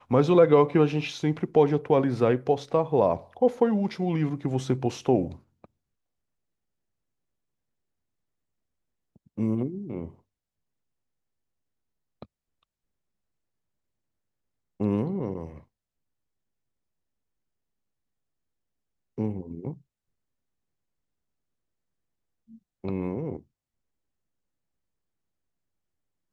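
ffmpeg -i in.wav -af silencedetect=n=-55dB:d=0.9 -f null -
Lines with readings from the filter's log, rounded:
silence_start: 5.65
silence_end: 9.16 | silence_duration: 3.50
silence_start: 10.19
silence_end: 12.22 | silence_duration: 2.03
silence_start: 12.63
silence_end: 14.80 | silence_duration: 2.17
silence_start: 15.64
silence_end: 19.18 | silence_duration: 3.54
silence_start: 19.81
silence_end: 22.49 | silence_duration: 2.67
silence_start: 23.43
silence_end: 26.32 | silence_duration: 2.89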